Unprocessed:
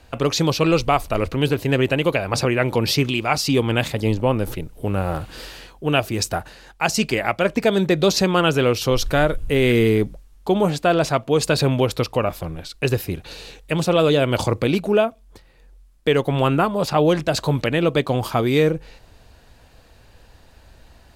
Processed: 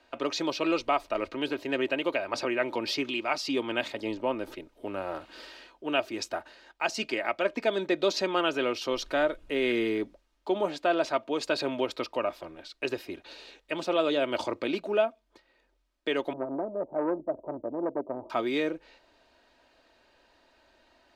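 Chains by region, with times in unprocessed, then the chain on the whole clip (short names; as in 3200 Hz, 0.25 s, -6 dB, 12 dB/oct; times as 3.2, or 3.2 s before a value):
16.33–18.3 steep low-pass 690 Hz + core saturation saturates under 460 Hz
whole clip: three-band isolator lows -21 dB, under 250 Hz, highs -16 dB, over 5700 Hz; comb 3.2 ms, depth 45%; gain -8.5 dB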